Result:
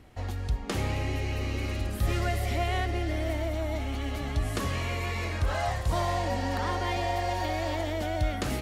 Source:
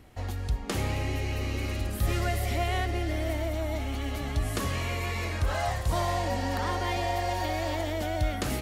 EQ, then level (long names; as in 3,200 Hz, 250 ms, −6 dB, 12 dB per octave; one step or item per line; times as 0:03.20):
high-shelf EQ 9,400 Hz −7 dB
0.0 dB